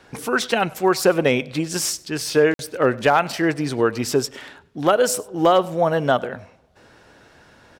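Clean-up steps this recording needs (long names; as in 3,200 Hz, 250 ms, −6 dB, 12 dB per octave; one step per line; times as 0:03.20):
clipped peaks rebuilt −6 dBFS
repair the gap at 0:02.54, 52 ms
echo removal 99 ms −23.5 dB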